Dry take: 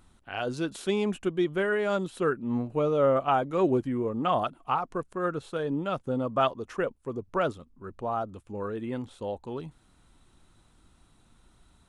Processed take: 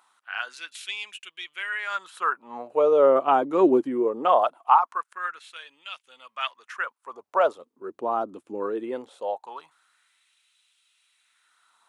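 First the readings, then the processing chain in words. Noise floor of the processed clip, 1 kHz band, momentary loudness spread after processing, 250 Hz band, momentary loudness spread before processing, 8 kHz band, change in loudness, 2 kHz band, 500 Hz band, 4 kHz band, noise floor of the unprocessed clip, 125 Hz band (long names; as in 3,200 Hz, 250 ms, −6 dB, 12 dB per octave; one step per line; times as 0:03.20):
−78 dBFS, +6.0 dB, 21 LU, −0.5 dB, 12 LU, can't be measured, +4.5 dB, +4.5 dB, +3.5 dB, +4.0 dB, −63 dBFS, below −15 dB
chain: dynamic equaliser 980 Hz, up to +6 dB, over −42 dBFS, Q 2
auto-filter high-pass sine 0.21 Hz 300–2,700 Hz
high-pass filter 88 Hz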